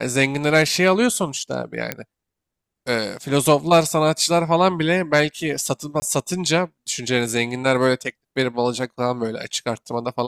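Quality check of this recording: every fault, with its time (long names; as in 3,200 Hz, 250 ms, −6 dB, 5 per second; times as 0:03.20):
0:01.92: click −7 dBFS
0:06.00–0:06.02: drop-out 20 ms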